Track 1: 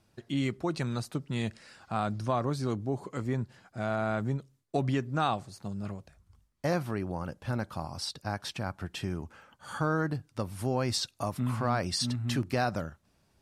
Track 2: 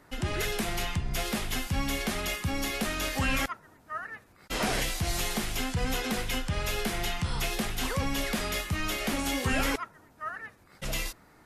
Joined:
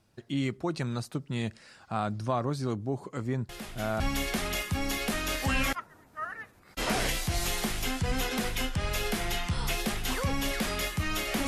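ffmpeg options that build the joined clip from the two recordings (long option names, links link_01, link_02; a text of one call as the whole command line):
ffmpeg -i cue0.wav -i cue1.wav -filter_complex "[1:a]asplit=2[link_01][link_02];[0:a]apad=whole_dur=11.47,atrim=end=11.47,atrim=end=4.002[link_03];[link_02]atrim=start=1.728:end=9.2[link_04];[link_01]atrim=start=1.22:end=1.73,asetpts=PTS-STARTPTS,volume=-10dB,afade=type=in:duration=0.004:curve=hsin,afade=type=out:start_time=0.506:duration=0.004:curve=hsin,adelay=153909S[link_05];[link_03][link_04]acrossfade=duration=0.004:curve1=hsin:curve2=hsin[link_06];[link_06][link_05]amix=inputs=2:normalize=0" out.wav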